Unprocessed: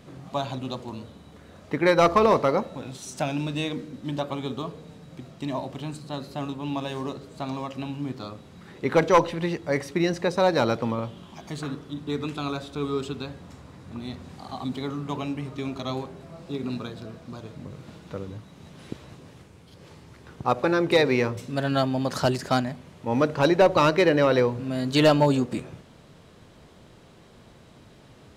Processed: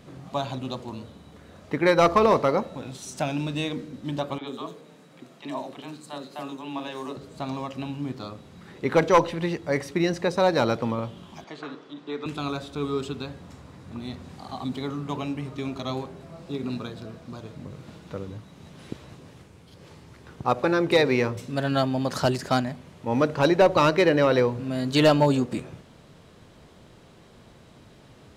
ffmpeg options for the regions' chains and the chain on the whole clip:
-filter_complex "[0:a]asettb=1/sr,asplit=3[a][b][c];[a]atrim=end=4.384[d];[b]atrim=start=4.38:end=7.16,asetpts=PTS-STARTPTS,afade=t=in:d=0.004:c=qsin,afade=t=out:st=2.776:d=0.004:c=qsin,highpass=280,acrossover=split=560|4700[e][f][g];[e]adelay=30[h];[g]adelay=90[i];[h][f][i]amix=inputs=3:normalize=0,atrim=end_sample=122598[j];[c]atrim=start=7.156[k];[d][j]acrossfade=d=0.004:c1=hsin:c2=qsin[l];[l][k]acrossfade=d=0.004:c1=qsin:c2=hsin,asettb=1/sr,asplit=3[m][n][o];[m]atrim=end=11.444[p];[n]atrim=start=11.44:end=12.26,asetpts=PTS-STARTPTS,afade=t=in:d=0.004:c=qsin,afade=t=out:st=0.816:d=0.004:c=qsin,acrossover=split=3600[q][r];[r]acompressor=threshold=-50dB:ratio=4:attack=1:release=60[s];[q][s]amix=inputs=2:normalize=0,highpass=360,lowpass=5k[t];[o]atrim=start=12.256[u];[p][t]acrossfade=d=0.004:c1=hsin:c2=qsin[v];[v][u]acrossfade=d=0.004:c1=qsin:c2=hsin"

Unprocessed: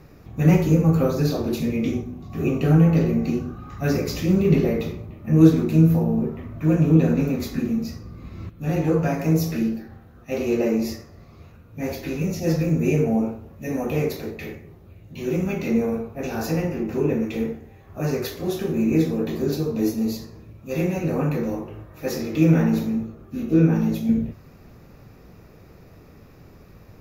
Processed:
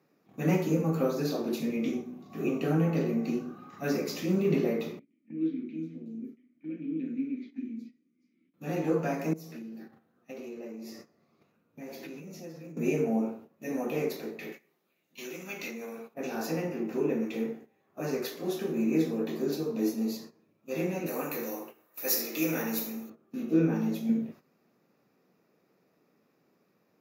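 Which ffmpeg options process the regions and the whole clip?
-filter_complex "[0:a]asettb=1/sr,asplit=3[a][b][c];[a]atrim=end=4.994[d];[b]atrim=start=4.99:end=8.54,asetpts=PTS-STARTPTS,afade=t=in:d=0.004:c=qsin,afade=t=out:st=3.546:d=0.004:c=qsin,asplit=3[e][f][g];[e]bandpass=f=270:t=q:w=8,volume=0dB[h];[f]bandpass=f=2.29k:t=q:w=8,volume=-6dB[i];[g]bandpass=f=3.01k:t=q:w=8,volume=-9dB[j];[h][i][j]amix=inputs=3:normalize=0,acrossover=split=4900[k][l];[l]adelay=370[m];[k][m]amix=inputs=2:normalize=0,atrim=end_sample=156555[n];[c]atrim=start=8.536[o];[d][n]acrossfade=d=0.004:c1=hsin:c2=qsin[p];[p][o]acrossfade=d=0.004:c1=qsin:c2=hsin,asettb=1/sr,asplit=3[q][r][s];[q]atrim=end=9.334[t];[r]atrim=start=9.33:end=12.77,asetpts=PTS-STARTPTS,afade=t=in:d=0.004:c=qsin,afade=t=out:st=3.436:d=0.004:c=qsin,lowshelf=f=160:g=4,acompressor=threshold=-31dB:ratio=16:attack=3.2:release=140:knee=1:detection=peak[u];[s]atrim=start=12.766[v];[t][u]acrossfade=d=0.004:c1=hsin:c2=qsin[w];[w][v]acrossfade=d=0.004:c1=qsin:c2=hsin,asettb=1/sr,asplit=3[x][y][z];[x]atrim=end=14.524[aa];[y]atrim=start=14.52:end=16.14,asetpts=PTS-STARTPTS,afade=t=in:d=0.004:c=qsin,afade=t=out:st=1.616:d=0.004:c=qsin,acompressor=threshold=-25dB:ratio=3:attack=3.2:release=140:knee=1:detection=peak,highpass=150,tiltshelf=f=1.1k:g=-8[ab];[z]atrim=start=16.136[ac];[aa][ab]acrossfade=d=0.004:c1=hsin:c2=qsin[ad];[ad][ac]acrossfade=d=0.004:c1=qsin:c2=hsin,asettb=1/sr,asplit=3[ae][af][ag];[ae]atrim=end=21.064[ah];[af]atrim=start=21.06:end=23.1,asetpts=PTS-STARTPTS,afade=t=in:d=0.004:c=qsin,afade=t=out:st=2.036:d=0.004:c=qsin,aemphasis=mode=production:type=riaa,bandreject=f=3.3k:w=16,aecho=1:1:75:0.237,atrim=end_sample=89964[ai];[ag]atrim=start=23.096[aj];[ah][ai]acrossfade=d=0.004:c1=hsin:c2=qsin[ak];[ak][aj]acrossfade=d=0.004:c1=qsin:c2=hsin,agate=range=-12dB:threshold=-38dB:ratio=16:detection=peak,highpass=f=190:w=0.5412,highpass=f=190:w=1.3066,volume=-6dB"

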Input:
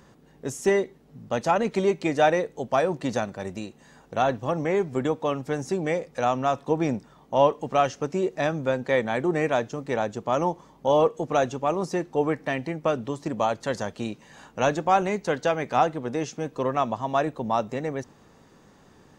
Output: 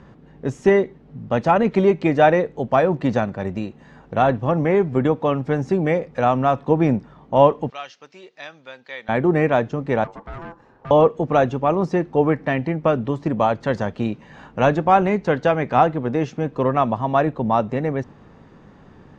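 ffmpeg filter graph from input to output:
-filter_complex "[0:a]asettb=1/sr,asplit=3[a][b][c];[a]atrim=end=7.704[d];[b]atrim=start=7.7:end=9.09,asetpts=PTS-STARTPTS,afade=t=in:d=0.004:c=qsin,afade=t=out:st=1.386:d=0.004:c=qsin,lowpass=f=4.5k:t=q:w=1.7,aderivative[e];[c]atrim=start=9.086[f];[d][e]acrossfade=d=0.004:c1=hsin:c2=qsin[g];[g][f]acrossfade=d=0.004:c1=qsin:c2=hsin,asettb=1/sr,asplit=3[h][i][j];[h]atrim=end=10.044[k];[i]atrim=start=10.04:end=10.91,asetpts=PTS-STARTPTS,afade=t=in:d=0.004:c=qsin,afade=t=out:st=0.866:d=0.004:c=qsin,acrossover=split=590|2400|5400[l][m][n][o];[l]acompressor=threshold=-31dB:ratio=3[p];[m]acompressor=threshold=-41dB:ratio=3[q];[n]acompressor=threshold=-59dB:ratio=3[r];[o]acompressor=threshold=-55dB:ratio=3[s];[p][q][r][s]amix=inputs=4:normalize=0,aeval=exprs='(tanh(63.1*val(0)+0.5)-tanh(0.5))/63.1':c=same,aeval=exprs='val(0)*sin(2*PI*670*n/s)':c=same[t];[j]atrim=start=10.906[u];[k][t]acrossfade=d=0.004:c1=hsin:c2=qsin[v];[v][u]acrossfade=d=0.004:c1=qsin:c2=hsin,lowpass=6.8k,bass=f=250:g=5,treble=f=4k:g=-14,volume=5.5dB"

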